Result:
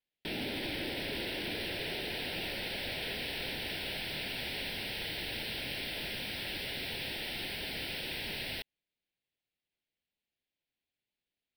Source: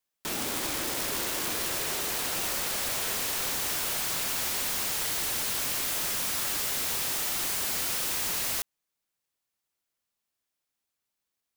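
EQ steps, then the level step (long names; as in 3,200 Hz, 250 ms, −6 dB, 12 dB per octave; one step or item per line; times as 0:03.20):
Savitzky-Golay smoothing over 15 samples
phaser with its sweep stopped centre 2,800 Hz, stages 4
0.0 dB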